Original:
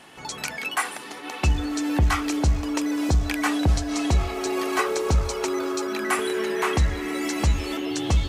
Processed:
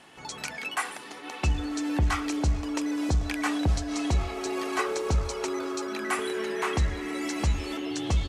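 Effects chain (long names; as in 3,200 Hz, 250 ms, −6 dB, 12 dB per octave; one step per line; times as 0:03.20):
low-pass filter 11,000 Hz 12 dB per octave
far-end echo of a speakerphone 110 ms, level −17 dB
level −4.5 dB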